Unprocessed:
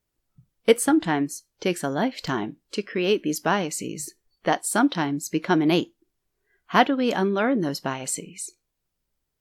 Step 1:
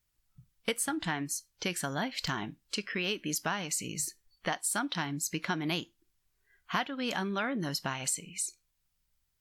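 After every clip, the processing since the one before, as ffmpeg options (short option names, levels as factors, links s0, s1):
-af "equalizer=f=390:t=o:w=2.2:g=-13,acompressor=threshold=0.0251:ratio=4,volume=1.33"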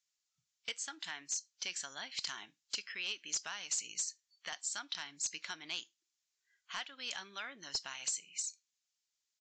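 -af "aderivative,aresample=16000,asoftclip=type=hard:threshold=0.0224,aresample=44100,volume=1.5"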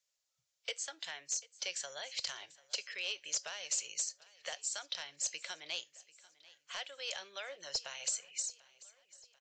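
-filter_complex "[0:a]acrossover=split=160|700|1600[s0][s1][s2][s3];[s1]highpass=f=540:t=q:w=4.9[s4];[s2]acompressor=threshold=0.00112:ratio=6[s5];[s0][s4][s5][s3]amix=inputs=4:normalize=0,aecho=1:1:741|1482|2223|2964:0.0891|0.0481|0.026|0.014,volume=1.12"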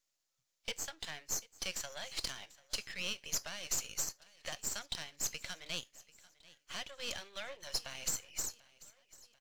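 -af "aeval=exprs='if(lt(val(0),0),0.251*val(0),val(0))':c=same,volume=1.41"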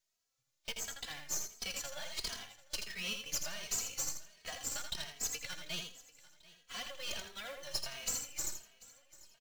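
-filter_complex "[0:a]acrusher=bits=3:mode=log:mix=0:aa=0.000001,asplit=2[s0][s1];[s1]aecho=0:1:82|164|246:0.501|0.11|0.0243[s2];[s0][s2]amix=inputs=2:normalize=0,asplit=2[s3][s4];[s4]adelay=2.8,afreqshift=1.4[s5];[s3][s5]amix=inputs=2:normalize=1,volume=1.26"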